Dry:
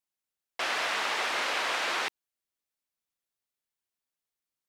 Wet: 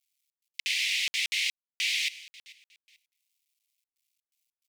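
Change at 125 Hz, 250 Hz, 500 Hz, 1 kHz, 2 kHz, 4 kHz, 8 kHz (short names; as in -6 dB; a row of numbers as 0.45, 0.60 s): n/a, under -25 dB, under -35 dB, under -35 dB, 0.0 dB, +4.5 dB, +5.0 dB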